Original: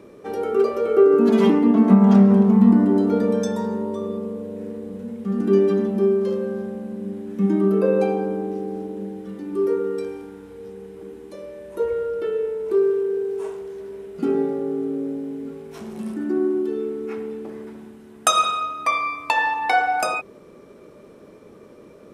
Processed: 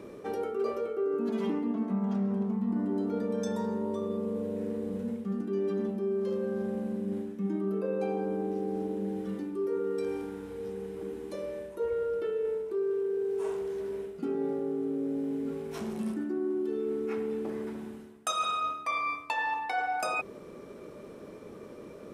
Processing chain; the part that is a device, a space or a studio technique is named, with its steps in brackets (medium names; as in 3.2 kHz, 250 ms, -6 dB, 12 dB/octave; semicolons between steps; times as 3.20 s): compression on the reversed sound (reverse; compression 6:1, threshold -29 dBFS, peak gain reduction 19.5 dB; reverse)